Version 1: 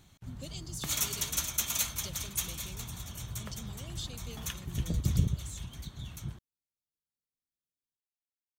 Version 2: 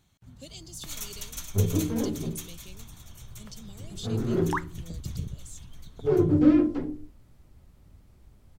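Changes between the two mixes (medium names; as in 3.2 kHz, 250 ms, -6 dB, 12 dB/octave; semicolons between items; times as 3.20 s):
first sound -7.0 dB; second sound: unmuted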